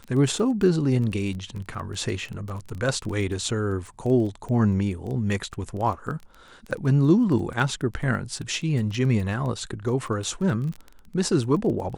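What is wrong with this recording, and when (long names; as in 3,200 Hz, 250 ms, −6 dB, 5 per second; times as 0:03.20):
surface crackle 15 per second −30 dBFS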